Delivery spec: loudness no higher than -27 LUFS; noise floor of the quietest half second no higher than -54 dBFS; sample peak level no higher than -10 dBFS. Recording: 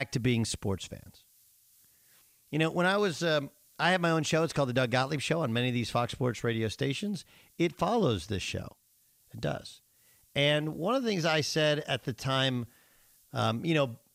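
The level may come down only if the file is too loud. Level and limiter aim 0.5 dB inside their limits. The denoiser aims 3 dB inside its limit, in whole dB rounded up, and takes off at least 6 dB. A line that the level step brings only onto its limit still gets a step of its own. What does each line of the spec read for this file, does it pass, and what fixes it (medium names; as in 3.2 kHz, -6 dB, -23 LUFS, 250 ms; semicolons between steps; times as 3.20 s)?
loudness -30.0 LUFS: pass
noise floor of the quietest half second -67 dBFS: pass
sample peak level -13.0 dBFS: pass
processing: none needed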